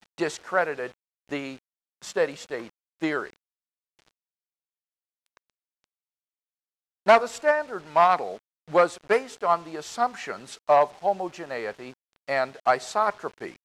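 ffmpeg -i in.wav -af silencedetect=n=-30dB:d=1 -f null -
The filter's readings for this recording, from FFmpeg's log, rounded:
silence_start: 3.27
silence_end: 7.07 | silence_duration: 3.80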